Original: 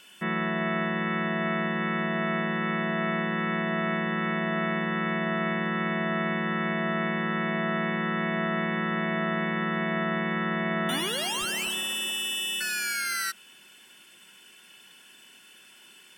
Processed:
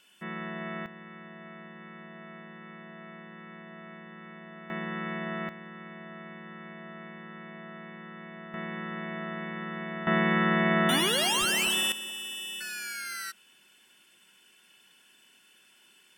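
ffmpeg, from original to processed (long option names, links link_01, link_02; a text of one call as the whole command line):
ffmpeg -i in.wav -af "asetnsamples=nb_out_samples=441:pad=0,asendcmd='0.86 volume volume -18.5dB;4.7 volume volume -6.5dB;5.49 volume volume -16.5dB;8.54 volume volume -8.5dB;10.07 volume volume 3.5dB;11.92 volume volume -7.5dB',volume=-9dB" out.wav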